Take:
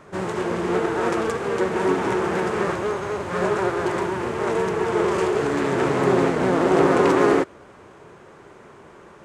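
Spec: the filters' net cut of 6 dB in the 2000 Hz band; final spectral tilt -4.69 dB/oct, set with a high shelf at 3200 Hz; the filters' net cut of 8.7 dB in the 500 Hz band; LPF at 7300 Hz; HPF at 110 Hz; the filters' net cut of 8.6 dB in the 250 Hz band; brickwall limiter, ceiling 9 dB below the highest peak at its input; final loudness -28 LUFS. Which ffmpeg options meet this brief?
-af "highpass=110,lowpass=7.3k,equalizer=f=250:t=o:g=-9,equalizer=f=500:t=o:g=-7.5,equalizer=f=2k:t=o:g=-5.5,highshelf=f=3.2k:g=-6,volume=2.5dB,alimiter=limit=-17.5dB:level=0:latency=1"

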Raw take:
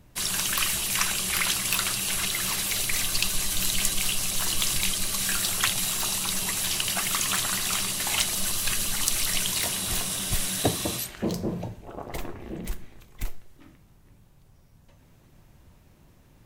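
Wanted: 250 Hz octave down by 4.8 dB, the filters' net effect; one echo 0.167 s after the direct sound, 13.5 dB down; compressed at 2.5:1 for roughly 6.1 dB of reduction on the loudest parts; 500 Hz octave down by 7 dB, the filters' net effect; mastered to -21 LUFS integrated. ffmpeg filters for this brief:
-af "equalizer=f=250:t=o:g=-5,equalizer=f=500:t=o:g=-8,acompressor=threshold=-29dB:ratio=2.5,aecho=1:1:167:0.211,volume=8dB"

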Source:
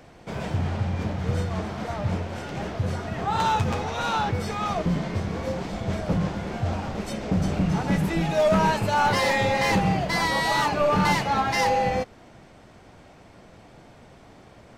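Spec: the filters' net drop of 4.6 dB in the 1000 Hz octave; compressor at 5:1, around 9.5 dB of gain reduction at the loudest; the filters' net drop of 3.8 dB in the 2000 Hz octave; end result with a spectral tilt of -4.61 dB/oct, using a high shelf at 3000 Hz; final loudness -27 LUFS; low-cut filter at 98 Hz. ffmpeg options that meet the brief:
-af "highpass=98,equalizer=f=1k:t=o:g=-5.5,equalizer=f=2k:t=o:g=-5.5,highshelf=f=3k:g=7.5,acompressor=threshold=-30dB:ratio=5,volume=6dB"

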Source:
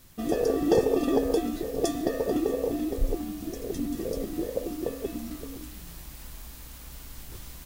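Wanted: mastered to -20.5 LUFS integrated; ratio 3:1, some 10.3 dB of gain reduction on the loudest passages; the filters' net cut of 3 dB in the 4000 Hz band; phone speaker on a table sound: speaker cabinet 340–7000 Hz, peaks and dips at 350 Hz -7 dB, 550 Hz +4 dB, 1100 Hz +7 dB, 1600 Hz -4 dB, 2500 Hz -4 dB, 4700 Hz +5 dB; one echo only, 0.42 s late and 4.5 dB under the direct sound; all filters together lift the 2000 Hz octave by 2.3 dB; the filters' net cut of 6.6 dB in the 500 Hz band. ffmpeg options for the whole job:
-af "equalizer=f=500:t=o:g=-7.5,equalizer=f=2k:t=o:g=7.5,equalizer=f=4k:t=o:g=-8,acompressor=threshold=-33dB:ratio=3,highpass=f=340:w=0.5412,highpass=f=340:w=1.3066,equalizer=f=350:t=q:w=4:g=-7,equalizer=f=550:t=q:w=4:g=4,equalizer=f=1.1k:t=q:w=4:g=7,equalizer=f=1.6k:t=q:w=4:g=-4,equalizer=f=2.5k:t=q:w=4:g=-4,equalizer=f=4.7k:t=q:w=4:g=5,lowpass=f=7k:w=0.5412,lowpass=f=7k:w=1.3066,aecho=1:1:420:0.596,volume=20.5dB"

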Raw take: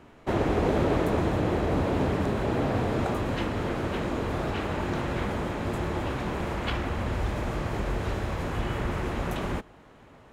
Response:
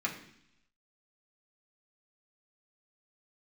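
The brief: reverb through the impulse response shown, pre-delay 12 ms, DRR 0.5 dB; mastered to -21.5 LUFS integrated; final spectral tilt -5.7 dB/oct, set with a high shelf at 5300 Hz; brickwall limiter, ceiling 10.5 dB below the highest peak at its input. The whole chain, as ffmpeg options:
-filter_complex "[0:a]highshelf=f=5.3k:g=3.5,alimiter=limit=-21.5dB:level=0:latency=1,asplit=2[a][b];[1:a]atrim=start_sample=2205,adelay=12[c];[b][c]afir=irnorm=-1:irlink=0,volume=-6dB[d];[a][d]amix=inputs=2:normalize=0,volume=7.5dB"

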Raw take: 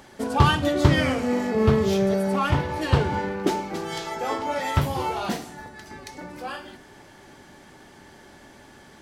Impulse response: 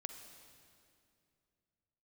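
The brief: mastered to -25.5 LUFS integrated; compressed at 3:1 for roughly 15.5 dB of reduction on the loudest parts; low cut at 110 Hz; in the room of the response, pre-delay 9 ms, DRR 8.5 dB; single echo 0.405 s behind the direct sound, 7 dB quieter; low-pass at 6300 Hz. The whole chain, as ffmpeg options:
-filter_complex "[0:a]highpass=110,lowpass=6.3k,acompressor=threshold=-37dB:ratio=3,aecho=1:1:405:0.447,asplit=2[a][b];[1:a]atrim=start_sample=2205,adelay=9[c];[b][c]afir=irnorm=-1:irlink=0,volume=-5.5dB[d];[a][d]amix=inputs=2:normalize=0,volume=10.5dB"

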